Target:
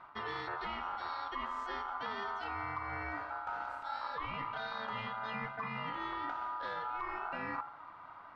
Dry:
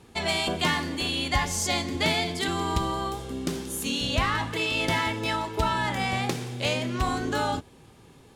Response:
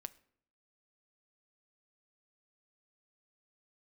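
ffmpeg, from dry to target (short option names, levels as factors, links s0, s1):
-filter_complex "[0:a]lowpass=2300,aemphasis=mode=reproduction:type=75kf,bandreject=f=66.04:t=h:w=4,bandreject=f=132.08:t=h:w=4,bandreject=f=198.12:t=h:w=4,bandreject=f=264.16:t=h:w=4,bandreject=f=330.2:t=h:w=4,acrossover=split=220[s0][s1];[s0]acontrast=75[s2];[s2][s1]amix=inputs=2:normalize=0,alimiter=limit=0.119:level=0:latency=1:release=154,areverse,acompressor=threshold=0.02:ratio=6,areverse,aeval=exprs='val(0)*sin(2*PI*1100*n/s)':c=same"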